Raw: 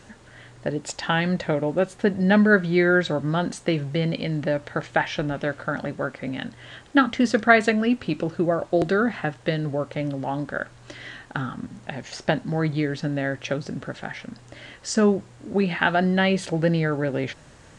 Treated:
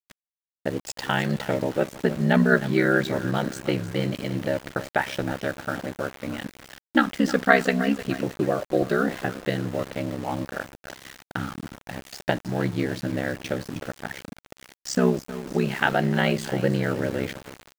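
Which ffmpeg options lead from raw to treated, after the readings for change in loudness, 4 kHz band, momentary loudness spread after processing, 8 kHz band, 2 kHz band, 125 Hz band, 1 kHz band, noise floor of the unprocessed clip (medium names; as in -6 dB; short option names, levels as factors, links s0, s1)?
-2.0 dB, -1.5 dB, 15 LU, -0.5 dB, -2.0 dB, -1.5 dB, -1.5 dB, -50 dBFS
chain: -af "aecho=1:1:311|622|933|1244:0.2|0.0918|0.0422|0.0194,aeval=exprs='val(0)*sin(2*PI*33*n/s)':c=same,aeval=exprs='val(0)*gte(abs(val(0)),0.0158)':c=same,volume=1.12"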